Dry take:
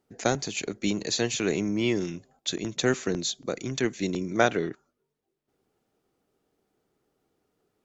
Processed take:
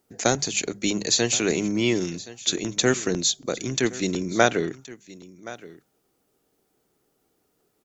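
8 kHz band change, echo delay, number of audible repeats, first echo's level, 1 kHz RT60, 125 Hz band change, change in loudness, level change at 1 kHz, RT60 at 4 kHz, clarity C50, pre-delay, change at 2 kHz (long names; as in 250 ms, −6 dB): can't be measured, 1,072 ms, 1, −18.5 dB, no reverb audible, +2.5 dB, +4.5 dB, +3.5 dB, no reverb audible, no reverb audible, no reverb audible, +4.0 dB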